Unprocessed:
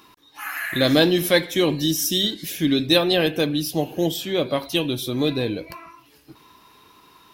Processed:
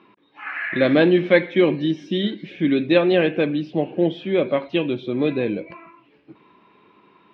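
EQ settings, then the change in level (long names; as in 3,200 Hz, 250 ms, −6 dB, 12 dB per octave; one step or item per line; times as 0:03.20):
spectral tilt −1.5 dB per octave
dynamic equaliser 1,700 Hz, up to +5 dB, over −35 dBFS, Q 1
loudspeaker in its box 160–3,200 Hz, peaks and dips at 200 Hz +7 dB, 370 Hz +5 dB, 550 Hz +5 dB, 2,300 Hz +6 dB
−3.5 dB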